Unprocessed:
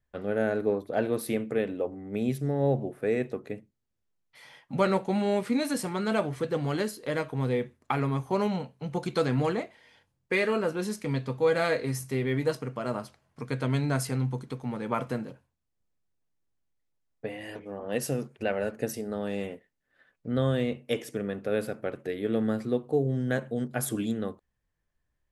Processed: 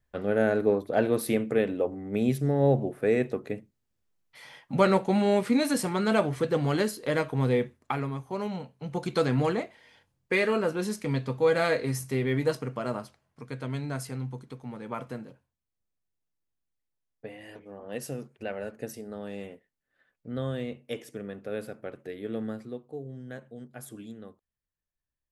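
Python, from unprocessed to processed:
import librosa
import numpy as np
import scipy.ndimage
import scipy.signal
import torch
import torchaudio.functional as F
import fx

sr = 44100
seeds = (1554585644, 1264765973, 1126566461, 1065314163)

y = fx.gain(x, sr, db=fx.line((7.63, 3.0), (8.24, -7.0), (9.16, 1.0), (12.79, 1.0), (13.42, -6.0), (22.44, -6.0), (22.87, -13.0)))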